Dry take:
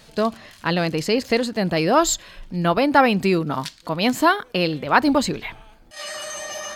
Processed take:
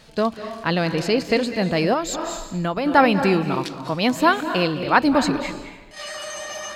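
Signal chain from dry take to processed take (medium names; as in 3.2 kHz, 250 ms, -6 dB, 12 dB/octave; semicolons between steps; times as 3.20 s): reverberation RT60 1.0 s, pre-delay 185 ms, DRR 9 dB; 1.93–2.86 s: compression 4:1, threshold -21 dBFS, peak gain reduction 9.5 dB; treble shelf 9 kHz -8 dB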